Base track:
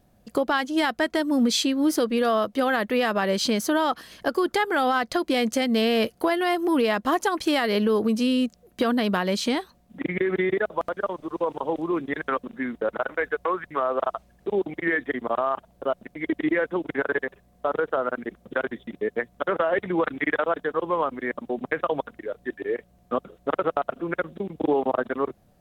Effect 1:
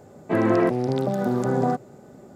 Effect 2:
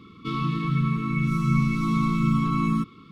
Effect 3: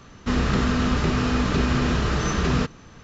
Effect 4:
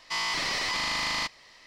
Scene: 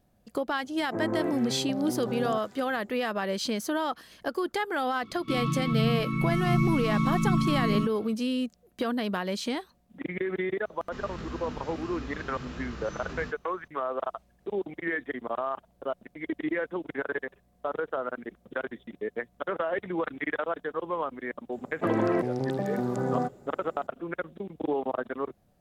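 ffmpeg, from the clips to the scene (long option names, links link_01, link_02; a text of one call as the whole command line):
ffmpeg -i bed.wav -i cue0.wav -i cue1.wav -i cue2.wav -filter_complex "[1:a]asplit=2[link_01][link_02];[0:a]volume=-6.5dB[link_03];[link_01]acrossover=split=1600[link_04][link_05];[link_05]adelay=270[link_06];[link_04][link_06]amix=inputs=2:normalize=0[link_07];[3:a]flanger=delay=17:depth=5.8:speed=1.5[link_08];[link_07]atrim=end=2.35,asetpts=PTS-STARTPTS,volume=-10.5dB,afade=type=in:duration=0.004:curve=hsin,afade=type=out:start_time=2.346:duration=0.004:curve=hsin,adelay=620[link_09];[2:a]atrim=end=3.11,asetpts=PTS-STARTPTS,volume=-3dB,afade=type=in:duration=0.004:curve=hsin,afade=type=out:start_time=3.106:duration=0.004:curve=hsin,adelay=5030[link_10];[link_08]atrim=end=3.03,asetpts=PTS-STARTPTS,volume=-14.5dB,afade=type=in:duration=0.004:curve=hsin,afade=type=out:start_time=3.026:duration=0.004:curve=hsin,adelay=10650[link_11];[link_02]atrim=end=2.35,asetpts=PTS-STARTPTS,volume=-6dB,afade=type=in:duration=0.004:curve=hsin,afade=type=out:start_time=2.346:duration=0.004:curve=hsin,adelay=21520[link_12];[link_03][link_09][link_10][link_11][link_12]amix=inputs=5:normalize=0" out.wav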